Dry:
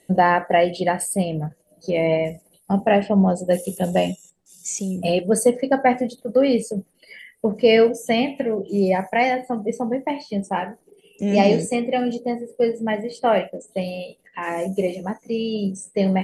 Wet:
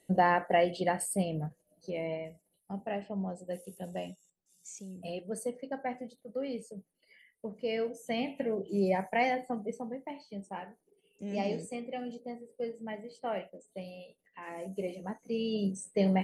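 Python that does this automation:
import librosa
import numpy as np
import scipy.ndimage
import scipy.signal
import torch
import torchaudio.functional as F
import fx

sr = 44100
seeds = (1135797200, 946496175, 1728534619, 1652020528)

y = fx.gain(x, sr, db=fx.line((1.44, -9.0), (2.3, -19.0), (7.76, -19.0), (8.46, -9.5), (9.49, -9.5), (9.97, -17.0), (14.49, -17.0), (15.53, -7.5)))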